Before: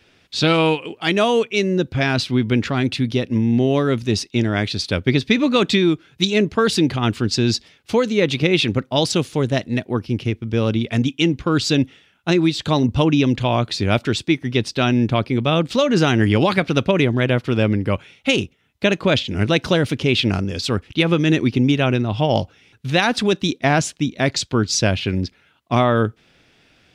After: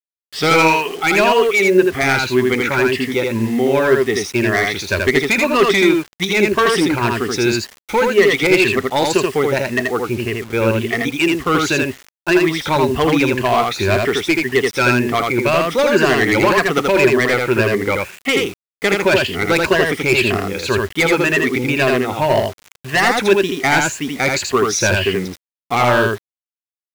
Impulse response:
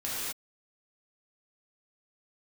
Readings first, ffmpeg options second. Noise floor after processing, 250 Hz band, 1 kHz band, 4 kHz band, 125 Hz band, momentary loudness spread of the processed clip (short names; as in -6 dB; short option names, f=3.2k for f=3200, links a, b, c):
under -85 dBFS, -0.5 dB, +6.5 dB, +0.5 dB, -4.0 dB, 7 LU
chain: -af "afftfilt=real='re*pow(10,12/40*sin(2*PI*(1.4*log(max(b,1)*sr/1024/100)/log(2)-(1.9)*(pts-256)/sr)))':imag='im*pow(10,12/40*sin(2*PI*(1.4*log(max(b,1)*sr/1024/100)/log(2)-(1.9)*(pts-256)/sr)))':win_size=1024:overlap=0.75,equalizer=f=125:t=o:w=1:g=-8,equalizer=f=250:t=o:w=1:g=-4,equalizer=f=1k:t=o:w=1:g=5,equalizer=f=2k:t=o:w=1:g=10,equalizer=f=4k:t=o:w=1:g=-7,volume=11dB,asoftclip=hard,volume=-11dB,equalizer=f=390:t=o:w=0.21:g=10,aecho=1:1:81:0.708,acrusher=bits=5:mix=0:aa=0.000001"